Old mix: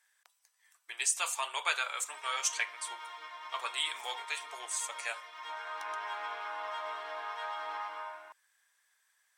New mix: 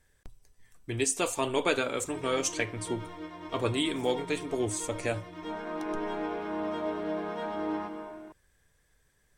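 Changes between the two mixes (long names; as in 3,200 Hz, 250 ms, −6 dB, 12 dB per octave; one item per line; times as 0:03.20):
background: send −7.0 dB
master: remove high-pass filter 910 Hz 24 dB per octave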